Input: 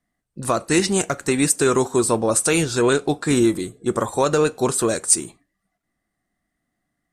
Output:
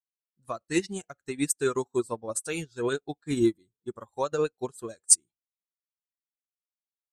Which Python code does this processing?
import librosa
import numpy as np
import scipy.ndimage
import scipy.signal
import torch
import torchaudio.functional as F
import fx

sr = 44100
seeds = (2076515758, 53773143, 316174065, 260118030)

y = fx.bin_expand(x, sr, power=1.5)
y = fx.cheby_harmonics(y, sr, harmonics=(2,), levels_db=(-37,), full_scale_db=-3.0)
y = fx.upward_expand(y, sr, threshold_db=-33.0, expansion=2.5)